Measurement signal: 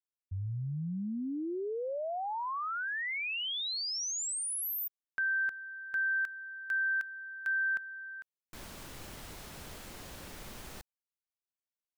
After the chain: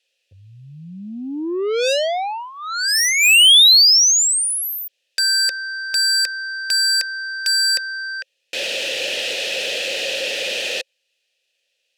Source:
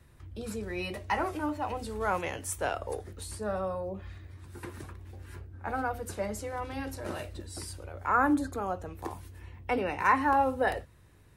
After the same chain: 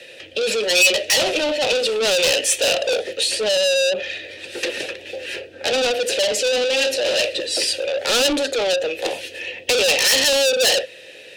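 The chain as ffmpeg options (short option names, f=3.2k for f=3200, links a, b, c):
-filter_complex "[0:a]asplit=3[a][b][c];[a]bandpass=f=530:t=q:w=8,volume=0dB[d];[b]bandpass=f=1.84k:t=q:w=8,volume=-6dB[e];[c]bandpass=f=2.48k:t=q:w=8,volume=-9dB[f];[d][e][f]amix=inputs=3:normalize=0,asplit=2[g][h];[h]highpass=f=720:p=1,volume=36dB,asoftclip=type=tanh:threshold=-20.5dB[i];[g][i]amix=inputs=2:normalize=0,lowpass=f=1.5k:p=1,volume=-6dB,aexciter=amount=12.6:drive=3.6:freq=2.7k,volume=8dB"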